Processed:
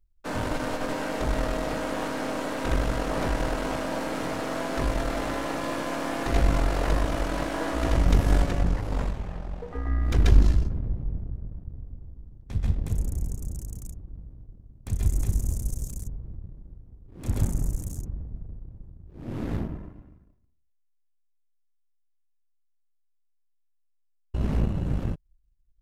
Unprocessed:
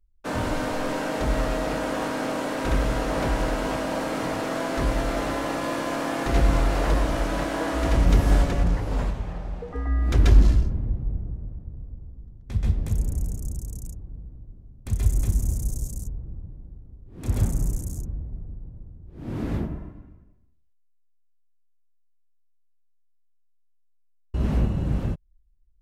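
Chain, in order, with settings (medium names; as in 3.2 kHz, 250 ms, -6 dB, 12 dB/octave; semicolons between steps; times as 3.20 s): partial rectifier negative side -7 dB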